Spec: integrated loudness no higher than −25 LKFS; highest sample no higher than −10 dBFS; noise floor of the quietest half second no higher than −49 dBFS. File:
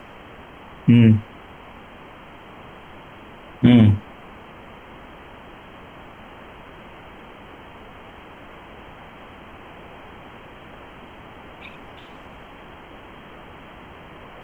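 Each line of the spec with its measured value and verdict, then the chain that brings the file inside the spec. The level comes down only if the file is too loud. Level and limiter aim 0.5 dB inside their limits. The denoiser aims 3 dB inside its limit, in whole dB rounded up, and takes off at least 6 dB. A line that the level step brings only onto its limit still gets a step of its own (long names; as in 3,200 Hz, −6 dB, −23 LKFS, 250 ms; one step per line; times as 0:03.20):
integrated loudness −16.0 LKFS: out of spec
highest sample −3.5 dBFS: out of spec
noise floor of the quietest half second −42 dBFS: out of spec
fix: level −9.5 dB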